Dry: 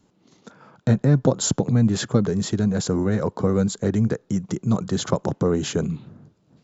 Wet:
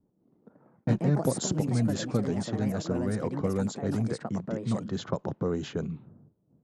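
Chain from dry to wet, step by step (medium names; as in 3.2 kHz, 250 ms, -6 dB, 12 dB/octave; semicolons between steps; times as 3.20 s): ever faster or slower copies 181 ms, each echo +4 st, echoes 2, each echo -6 dB; level-controlled noise filter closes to 580 Hz, open at -15 dBFS; trim -8.5 dB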